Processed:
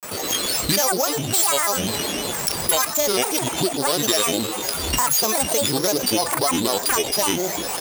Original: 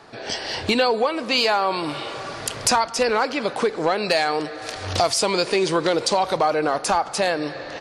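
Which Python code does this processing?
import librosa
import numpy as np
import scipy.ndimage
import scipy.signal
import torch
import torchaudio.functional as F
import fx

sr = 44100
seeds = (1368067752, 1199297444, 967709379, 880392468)

y = np.r_[np.sort(x[:len(x) // 8 * 8].reshape(-1, 8), axis=1).ravel(), x[len(x) // 8 * 8:]]
y = fx.high_shelf(y, sr, hz=5000.0, db=11.0)
y = fx.granulator(y, sr, seeds[0], grain_ms=100.0, per_s=20.0, spray_ms=22.0, spread_st=12)
y = fx.peak_eq(y, sr, hz=1800.0, db=-2.5, octaves=2.1)
y = fx.env_flatten(y, sr, amount_pct=50)
y = y * librosa.db_to_amplitude(-3.5)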